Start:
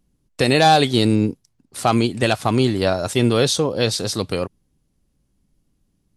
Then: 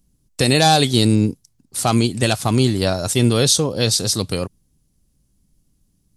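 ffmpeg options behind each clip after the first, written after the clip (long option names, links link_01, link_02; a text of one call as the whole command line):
ffmpeg -i in.wav -af "bass=frequency=250:gain=6,treble=frequency=4000:gain=11,volume=-2dB" out.wav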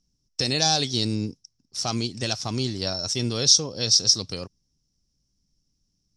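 ffmpeg -i in.wav -af "lowpass=frequency=5500:width_type=q:width=11,volume=-11.5dB" out.wav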